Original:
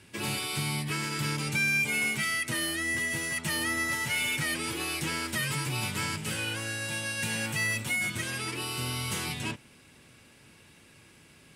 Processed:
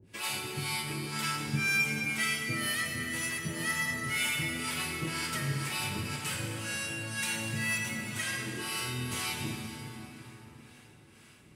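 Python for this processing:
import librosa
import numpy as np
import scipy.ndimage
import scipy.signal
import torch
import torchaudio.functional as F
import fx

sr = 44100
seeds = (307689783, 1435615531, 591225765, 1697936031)

y = fx.harmonic_tremolo(x, sr, hz=2.0, depth_pct=100, crossover_hz=560.0)
y = fx.rev_plate(y, sr, seeds[0], rt60_s=4.2, hf_ratio=0.65, predelay_ms=0, drr_db=0.5)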